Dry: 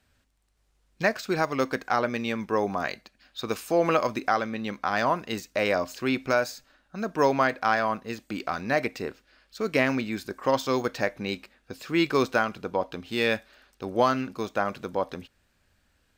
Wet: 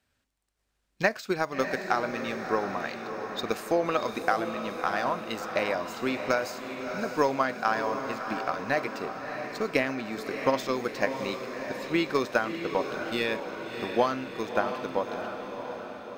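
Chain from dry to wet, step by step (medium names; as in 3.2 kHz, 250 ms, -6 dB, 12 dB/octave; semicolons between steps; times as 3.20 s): bass shelf 96 Hz -8.5 dB; transient shaper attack +8 dB, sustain +3 dB; on a send: echo that smears into a reverb 653 ms, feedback 59%, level -7 dB; on the sum: trim -6.5 dB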